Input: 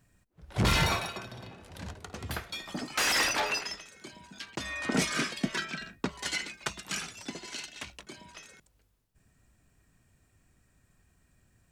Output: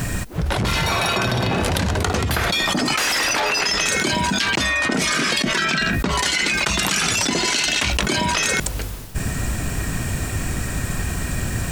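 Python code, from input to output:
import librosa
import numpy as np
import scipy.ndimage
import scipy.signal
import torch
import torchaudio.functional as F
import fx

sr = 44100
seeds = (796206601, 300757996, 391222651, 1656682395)

y = fx.env_flatten(x, sr, amount_pct=100)
y = y * 10.0 ** (2.5 / 20.0)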